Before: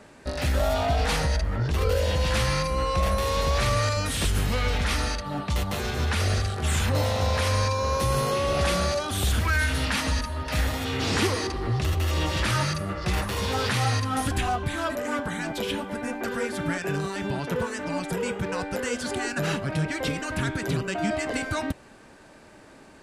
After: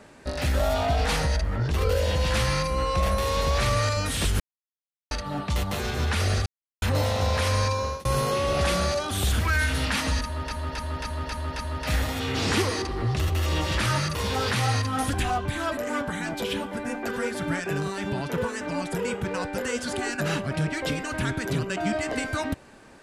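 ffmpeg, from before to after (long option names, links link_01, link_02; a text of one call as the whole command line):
ffmpeg -i in.wav -filter_complex "[0:a]asplit=12[link_01][link_02][link_03][link_04][link_05][link_06][link_07][link_08][link_09][link_10][link_11][link_12];[link_01]atrim=end=4.4,asetpts=PTS-STARTPTS,afade=type=out:start_time=4.396:duration=0.004:curve=hsin[link_13];[link_02]atrim=start=4.4:end=5.11,asetpts=PTS-STARTPTS,volume=0[link_14];[link_03]atrim=start=5.11:end=6.46,asetpts=PTS-STARTPTS,afade=type=in:duration=0.004:curve=hsin,afade=type=out:start_time=1.346:duration=0.004:curve=hsin[link_15];[link_04]atrim=start=6.46:end=6.82,asetpts=PTS-STARTPTS,volume=0[link_16];[link_05]atrim=start=6.82:end=8.05,asetpts=PTS-STARTPTS,afade=type=in:duration=0.004:curve=hsin,afade=type=out:start_time=0.87:duration=0.36:curve=qsin[link_17];[link_06]atrim=start=8.05:end=10.512,asetpts=PTS-STARTPTS,afade=type=in:duration=0.004:curve=hsin[link_18];[link_07]atrim=start=10.238:end=10.512[link_19];[link_08]atrim=start=10.238:end=10.512[link_20];[link_09]atrim=start=10.238:end=10.512[link_21];[link_10]atrim=start=10.238:end=10.512[link_22];[link_11]atrim=start=10.238:end=12.802[link_23];[link_12]atrim=start=13.328[link_24];[link_13][link_14][link_15][link_16][link_17][link_18]concat=n=6:v=0:a=1[link_25];[link_25][link_19]acrossfade=duration=0.004:curve1=hsin:curve2=hsin[link_26];[link_26][link_20]acrossfade=duration=0.004:curve1=hsin:curve2=hsin[link_27];[link_27][link_21]acrossfade=duration=0.004:curve1=hsin:curve2=hsin[link_28];[link_28][link_22]acrossfade=duration=0.004:curve1=hsin:curve2=hsin[link_29];[link_29][link_23]acrossfade=duration=0.004:curve1=hsin:curve2=hsin[link_30];[link_30][link_24]acrossfade=duration=0.004:curve1=hsin:curve2=hsin" out.wav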